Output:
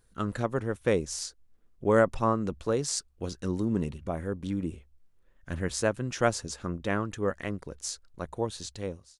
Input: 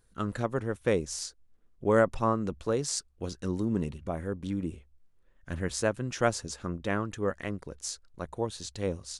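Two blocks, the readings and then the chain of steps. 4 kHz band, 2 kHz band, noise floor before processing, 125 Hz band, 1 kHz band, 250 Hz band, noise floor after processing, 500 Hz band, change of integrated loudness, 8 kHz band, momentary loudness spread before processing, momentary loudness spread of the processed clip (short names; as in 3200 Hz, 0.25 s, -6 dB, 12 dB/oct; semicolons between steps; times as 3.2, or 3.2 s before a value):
+1.0 dB, +1.0 dB, -64 dBFS, +1.0 dB, +1.0 dB, +1.0 dB, -63 dBFS, +1.0 dB, +1.0 dB, +1.0 dB, 11 LU, 11 LU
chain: ending faded out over 0.58 s; gain +1 dB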